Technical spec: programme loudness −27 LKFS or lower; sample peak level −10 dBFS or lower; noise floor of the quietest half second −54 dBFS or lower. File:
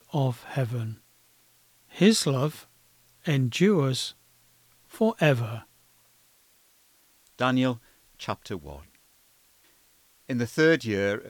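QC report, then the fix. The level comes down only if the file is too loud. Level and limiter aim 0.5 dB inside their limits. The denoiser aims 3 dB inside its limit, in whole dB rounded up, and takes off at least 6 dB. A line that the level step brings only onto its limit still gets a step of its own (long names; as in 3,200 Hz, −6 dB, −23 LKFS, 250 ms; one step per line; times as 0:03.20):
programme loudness −26.0 LKFS: out of spec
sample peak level −7.5 dBFS: out of spec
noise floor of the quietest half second −62 dBFS: in spec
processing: level −1.5 dB
brickwall limiter −10.5 dBFS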